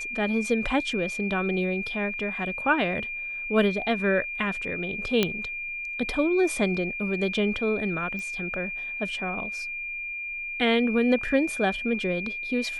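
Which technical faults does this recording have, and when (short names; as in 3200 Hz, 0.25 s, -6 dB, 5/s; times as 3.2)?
tone 2400 Hz -31 dBFS
5.23 pop -8 dBFS
8.19 pop -24 dBFS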